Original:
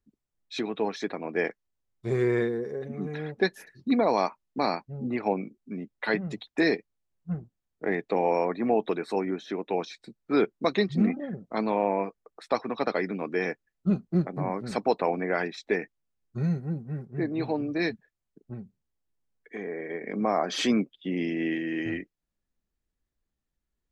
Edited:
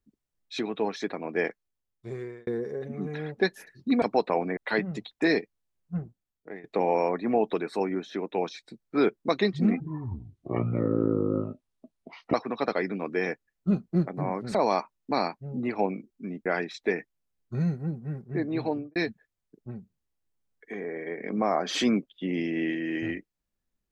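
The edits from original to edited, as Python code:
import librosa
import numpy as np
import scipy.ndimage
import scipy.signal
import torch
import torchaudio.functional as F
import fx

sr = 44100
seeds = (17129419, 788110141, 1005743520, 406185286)

y = fx.studio_fade_out(x, sr, start_s=17.53, length_s=0.26)
y = fx.edit(y, sr, fx.fade_out_span(start_s=1.46, length_s=1.01),
    fx.swap(start_s=4.02, length_s=1.91, other_s=14.74, other_length_s=0.55),
    fx.fade_out_to(start_s=7.37, length_s=0.63, floor_db=-22.0),
    fx.speed_span(start_s=11.16, length_s=1.37, speed=0.54), tone=tone)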